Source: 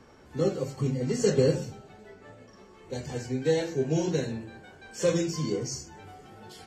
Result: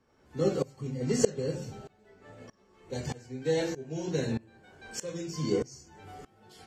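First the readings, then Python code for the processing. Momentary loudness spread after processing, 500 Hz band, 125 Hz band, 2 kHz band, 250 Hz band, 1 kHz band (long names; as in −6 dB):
21 LU, −3.5 dB, −5.0 dB, −3.0 dB, −3.5 dB, −2.5 dB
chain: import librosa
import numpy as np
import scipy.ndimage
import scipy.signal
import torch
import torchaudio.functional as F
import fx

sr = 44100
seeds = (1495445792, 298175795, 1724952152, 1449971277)

y = fx.tremolo_decay(x, sr, direction='swelling', hz=1.6, depth_db=22)
y = y * 10.0 ** (5.0 / 20.0)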